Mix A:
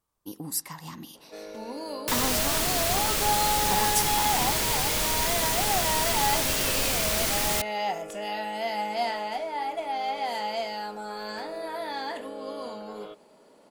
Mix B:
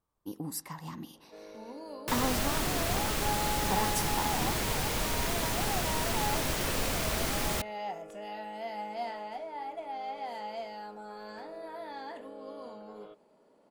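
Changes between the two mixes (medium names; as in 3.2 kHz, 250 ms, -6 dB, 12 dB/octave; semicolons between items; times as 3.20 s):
first sound -7.0 dB; master: add treble shelf 2.1 kHz -9 dB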